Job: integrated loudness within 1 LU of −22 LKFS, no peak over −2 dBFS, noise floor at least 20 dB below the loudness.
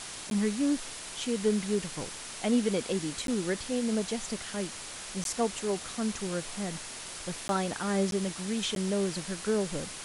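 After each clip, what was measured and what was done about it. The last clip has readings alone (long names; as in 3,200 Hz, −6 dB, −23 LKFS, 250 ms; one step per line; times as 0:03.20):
number of dropouts 6; longest dropout 12 ms; background noise floor −42 dBFS; target noise floor −52 dBFS; integrated loudness −31.5 LKFS; sample peak −15.5 dBFS; target loudness −22.0 LKFS
→ repair the gap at 0:00.30/0:03.27/0:05.24/0:07.48/0:08.11/0:08.75, 12 ms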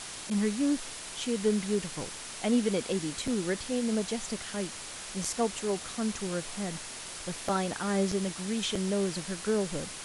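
number of dropouts 0; background noise floor −42 dBFS; target noise floor −52 dBFS
→ broadband denoise 10 dB, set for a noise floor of −42 dBFS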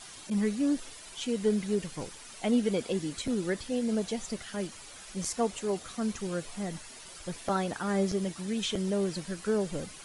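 background noise floor −48 dBFS; target noise floor −52 dBFS
→ broadband denoise 6 dB, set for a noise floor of −48 dBFS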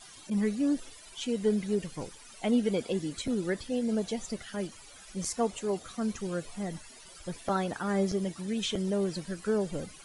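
background noise floor −51 dBFS; target noise floor −52 dBFS
→ broadband denoise 6 dB, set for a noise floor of −51 dBFS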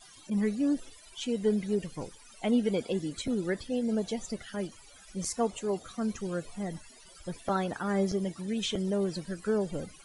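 background noise floor −54 dBFS; integrated loudness −32.0 LKFS; sample peak −16.5 dBFS; target loudness −22.0 LKFS
→ level +10 dB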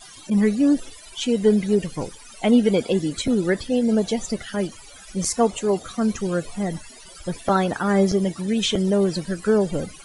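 integrated loudness −22.0 LKFS; sample peak −6.5 dBFS; background noise floor −44 dBFS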